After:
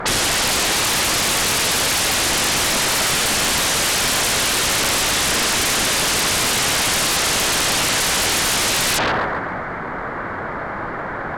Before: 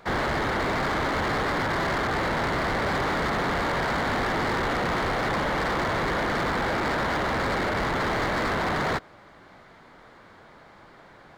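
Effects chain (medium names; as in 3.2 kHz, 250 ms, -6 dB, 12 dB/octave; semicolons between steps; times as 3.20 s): resonant high shelf 2.5 kHz -12.5 dB, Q 1.5; two-band feedback delay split 470 Hz, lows 102 ms, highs 136 ms, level -12 dB; sine folder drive 19 dB, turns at -15.5 dBFS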